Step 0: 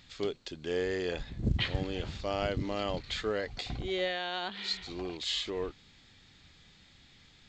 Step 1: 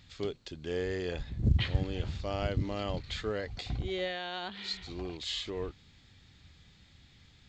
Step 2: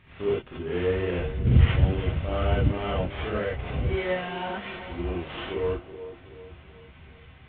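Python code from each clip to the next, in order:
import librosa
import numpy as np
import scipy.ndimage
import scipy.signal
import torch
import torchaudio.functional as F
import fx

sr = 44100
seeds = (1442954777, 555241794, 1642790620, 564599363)

y1 = fx.peak_eq(x, sr, hz=79.0, db=9.0, octaves=2.1)
y1 = y1 * 10.0 ** (-3.0 / 20.0)
y2 = fx.cvsd(y1, sr, bps=16000)
y2 = fx.echo_wet_bandpass(y2, sr, ms=377, feedback_pct=46, hz=500.0, wet_db=-11.5)
y2 = fx.rev_gated(y2, sr, seeds[0], gate_ms=110, shape='rising', drr_db=-7.5)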